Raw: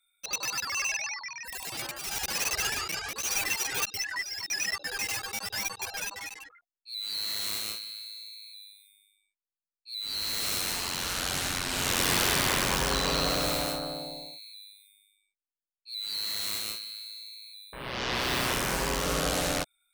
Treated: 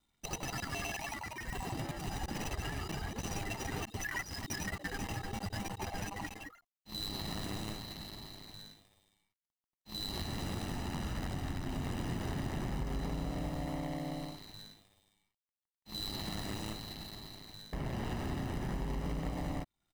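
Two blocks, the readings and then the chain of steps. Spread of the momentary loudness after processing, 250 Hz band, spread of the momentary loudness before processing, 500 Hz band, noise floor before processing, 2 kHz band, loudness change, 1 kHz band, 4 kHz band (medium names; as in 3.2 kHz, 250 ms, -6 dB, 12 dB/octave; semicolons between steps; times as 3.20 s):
8 LU, -0.5 dB, 14 LU, -8.5 dB, under -85 dBFS, -11.5 dB, -10.5 dB, -8.0 dB, -13.5 dB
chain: median filter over 41 samples; comb 1 ms, depth 58%; compression 6:1, threshold -46 dBFS, peak gain reduction 19 dB; trim +11 dB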